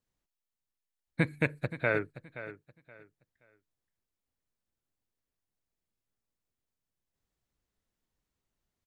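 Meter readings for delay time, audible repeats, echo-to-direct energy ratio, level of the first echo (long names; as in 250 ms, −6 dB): 524 ms, 2, −13.5 dB, −14.0 dB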